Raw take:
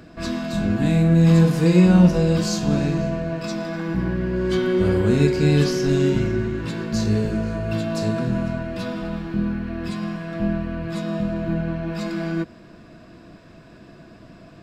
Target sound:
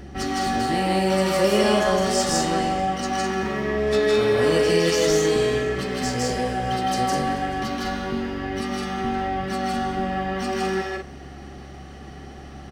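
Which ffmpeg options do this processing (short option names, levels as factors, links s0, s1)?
-filter_complex "[0:a]acrossover=split=340[s0][s1];[s0]acompressor=threshold=0.0316:ratio=6[s2];[s1]aecho=1:1:183.7|236.2:1|0.631[s3];[s2][s3]amix=inputs=2:normalize=0,aeval=exprs='val(0)+0.00794*(sin(2*PI*60*n/s)+sin(2*PI*2*60*n/s)/2+sin(2*PI*3*60*n/s)/3+sin(2*PI*4*60*n/s)/4+sin(2*PI*5*60*n/s)/5)':c=same,asetrate=50715,aresample=44100,volume=1.19"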